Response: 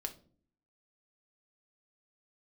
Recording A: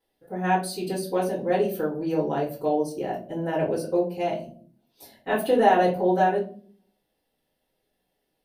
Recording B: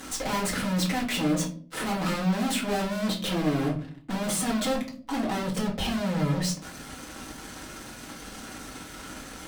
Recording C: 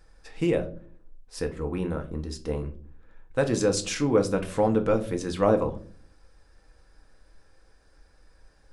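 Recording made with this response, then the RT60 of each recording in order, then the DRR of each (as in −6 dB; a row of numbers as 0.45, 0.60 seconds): C; 0.45, 0.45, 0.45 seconds; −10.0, −3.5, 5.0 decibels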